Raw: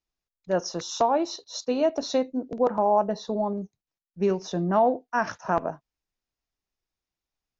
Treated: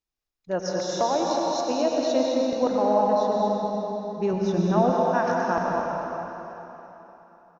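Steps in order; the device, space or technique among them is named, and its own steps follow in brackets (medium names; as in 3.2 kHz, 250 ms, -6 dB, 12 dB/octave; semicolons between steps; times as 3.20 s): cave (delay 214 ms -8 dB; reverberation RT60 3.7 s, pre-delay 89 ms, DRR -1.5 dB); 4.33–4.90 s: tone controls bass +7 dB, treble -3 dB; trim -2.5 dB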